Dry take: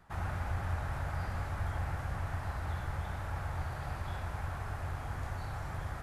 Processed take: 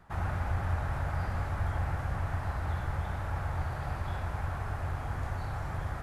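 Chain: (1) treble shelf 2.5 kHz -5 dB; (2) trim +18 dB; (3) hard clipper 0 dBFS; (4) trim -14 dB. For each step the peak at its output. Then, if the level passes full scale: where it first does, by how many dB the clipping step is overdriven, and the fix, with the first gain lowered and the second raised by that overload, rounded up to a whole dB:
-24.0 dBFS, -6.0 dBFS, -6.0 dBFS, -20.0 dBFS; nothing clips

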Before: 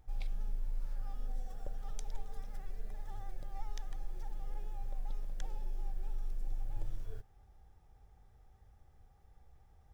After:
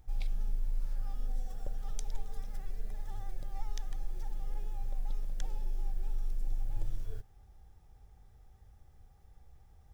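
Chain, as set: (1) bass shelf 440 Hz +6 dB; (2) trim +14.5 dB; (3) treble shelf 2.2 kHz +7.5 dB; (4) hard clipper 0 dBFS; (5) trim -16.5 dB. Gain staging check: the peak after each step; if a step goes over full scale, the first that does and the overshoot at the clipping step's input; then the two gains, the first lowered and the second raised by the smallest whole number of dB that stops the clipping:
-19.5 dBFS, -5.0 dBFS, -4.5 dBFS, -4.5 dBFS, -21.0 dBFS; nothing clips

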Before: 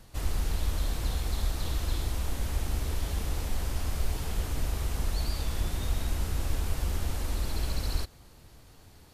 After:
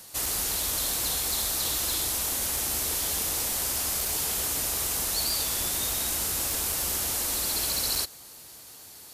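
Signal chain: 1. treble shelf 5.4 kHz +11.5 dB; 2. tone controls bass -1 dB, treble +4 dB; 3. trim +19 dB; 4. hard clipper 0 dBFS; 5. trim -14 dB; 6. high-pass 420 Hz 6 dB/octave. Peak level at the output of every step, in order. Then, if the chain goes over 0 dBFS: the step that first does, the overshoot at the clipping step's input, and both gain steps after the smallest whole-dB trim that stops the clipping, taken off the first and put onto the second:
-15.0 dBFS, -15.0 dBFS, +4.0 dBFS, 0.0 dBFS, -14.0 dBFS, -15.5 dBFS; step 3, 4.0 dB; step 3 +15 dB, step 5 -10 dB

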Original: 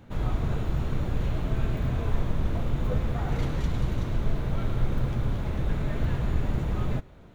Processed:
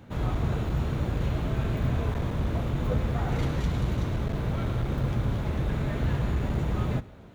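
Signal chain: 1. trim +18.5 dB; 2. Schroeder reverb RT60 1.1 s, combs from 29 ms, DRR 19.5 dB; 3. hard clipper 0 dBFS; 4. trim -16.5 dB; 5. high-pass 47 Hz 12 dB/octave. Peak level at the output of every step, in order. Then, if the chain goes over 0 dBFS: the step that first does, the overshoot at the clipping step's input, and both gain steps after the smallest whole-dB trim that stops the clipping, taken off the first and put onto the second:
+7.0 dBFS, +6.5 dBFS, 0.0 dBFS, -16.5 dBFS, -14.5 dBFS; step 1, 6.5 dB; step 1 +11.5 dB, step 4 -9.5 dB

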